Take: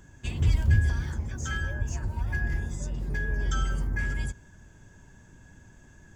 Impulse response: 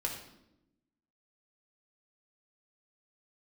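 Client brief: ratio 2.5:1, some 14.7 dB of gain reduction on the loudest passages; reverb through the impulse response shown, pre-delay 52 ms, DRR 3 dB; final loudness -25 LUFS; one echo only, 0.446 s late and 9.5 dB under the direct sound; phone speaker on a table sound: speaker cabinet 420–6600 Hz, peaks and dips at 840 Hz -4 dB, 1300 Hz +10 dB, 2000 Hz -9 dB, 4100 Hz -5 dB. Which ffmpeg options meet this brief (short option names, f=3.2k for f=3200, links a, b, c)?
-filter_complex "[0:a]acompressor=threshold=-40dB:ratio=2.5,aecho=1:1:446:0.335,asplit=2[a][b];[1:a]atrim=start_sample=2205,adelay=52[c];[b][c]afir=irnorm=-1:irlink=0,volume=-6dB[d];[a][d]amix=inputs=2:normalize=0,highpass=f=420:w=0.5412,highpass=f=420:w=1.3066,equalizer=f=840:t=q:w=4:g=-4,equalizer=f=1.3k:t=q:w=4:g=10,equalizer=f=2k:t=q:w=4:g=-9,equalizer=f=4.1k:t=q:w=4:g=-5,lowpass=f=6.6k:w=0.5412,lowpass=f=6.6k:w=1.3066,volume=21.5dB"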